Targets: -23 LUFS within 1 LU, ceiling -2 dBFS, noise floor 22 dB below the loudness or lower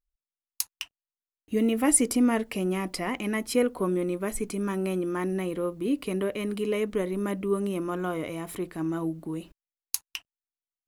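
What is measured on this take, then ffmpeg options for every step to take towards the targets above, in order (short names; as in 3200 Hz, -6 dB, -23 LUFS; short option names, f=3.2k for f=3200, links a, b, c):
loudness -28.5 LUFS; peak -6.0 dBFS; loudness target -23.0 LUFS
-> -af "volume=5.5dB,alimiter=limit=-2dB:level=0:latency=1"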